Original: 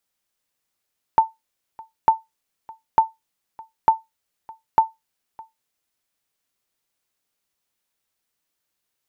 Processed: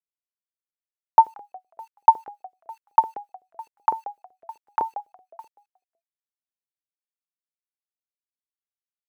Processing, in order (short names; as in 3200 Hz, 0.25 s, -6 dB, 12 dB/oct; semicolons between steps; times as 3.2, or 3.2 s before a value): 3.74–4.82 treble ducked by the level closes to 1400 Hz, closed at -17 dBFS; high shelf 2100 Hz -10.5 dB; bit-crush 10-bit; frequency-shifting echo 0.181 s, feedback 35%, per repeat -76 Hz, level -19 dB; LFO high-pass saw up 7.9 Hz 410–1900 Hz; gain -1 dB